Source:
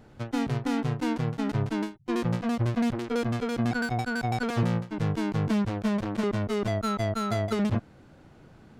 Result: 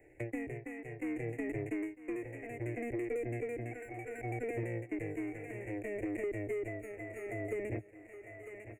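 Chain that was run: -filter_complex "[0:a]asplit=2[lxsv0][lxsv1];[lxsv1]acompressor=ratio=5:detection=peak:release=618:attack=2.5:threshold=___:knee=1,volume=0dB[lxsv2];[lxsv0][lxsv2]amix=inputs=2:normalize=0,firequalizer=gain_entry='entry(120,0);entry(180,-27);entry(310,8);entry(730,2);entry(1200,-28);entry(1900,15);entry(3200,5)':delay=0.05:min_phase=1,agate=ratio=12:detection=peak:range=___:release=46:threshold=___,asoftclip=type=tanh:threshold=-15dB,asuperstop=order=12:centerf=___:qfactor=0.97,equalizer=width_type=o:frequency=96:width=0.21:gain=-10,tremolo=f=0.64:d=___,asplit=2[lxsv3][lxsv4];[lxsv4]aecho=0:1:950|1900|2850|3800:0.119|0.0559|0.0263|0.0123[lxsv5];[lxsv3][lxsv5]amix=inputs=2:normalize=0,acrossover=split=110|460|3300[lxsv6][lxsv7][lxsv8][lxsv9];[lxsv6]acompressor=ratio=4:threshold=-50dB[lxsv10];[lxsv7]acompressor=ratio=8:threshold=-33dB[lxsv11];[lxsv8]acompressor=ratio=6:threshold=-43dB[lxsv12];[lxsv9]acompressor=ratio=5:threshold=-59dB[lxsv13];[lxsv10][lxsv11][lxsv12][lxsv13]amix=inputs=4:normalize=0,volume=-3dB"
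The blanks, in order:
-34dB, -13dB, -39dB, 4300, 0.84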